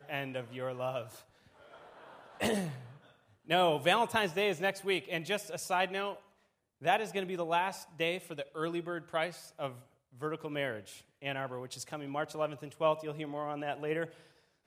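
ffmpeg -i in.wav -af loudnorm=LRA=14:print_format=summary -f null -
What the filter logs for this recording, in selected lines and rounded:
Input Integrated:    -34.7 LUFS
Input True Peak:     -12.4 dBTP
Input LRA:             7.1 LU
Input Threshold:     -45.5 LUFS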